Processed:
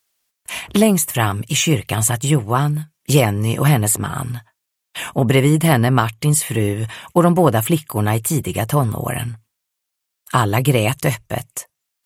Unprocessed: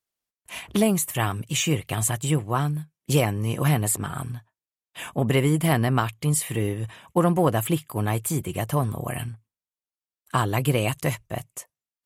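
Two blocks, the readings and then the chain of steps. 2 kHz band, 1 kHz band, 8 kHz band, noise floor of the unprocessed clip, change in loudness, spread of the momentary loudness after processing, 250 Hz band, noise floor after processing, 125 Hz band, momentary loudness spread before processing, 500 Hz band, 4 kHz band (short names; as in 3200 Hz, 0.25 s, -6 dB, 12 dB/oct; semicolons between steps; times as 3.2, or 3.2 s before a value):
+7.0 dB, +7.0 dB, +7.0 dB, under -85 dBFS, +7.0 dB, 12 LU, +7.0 dB, -78 dBFS, +7.0 dB, 12 LU, +7.0 dB, +7.5 dB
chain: mismatched tape noise reduction encoder only; gain +7 dB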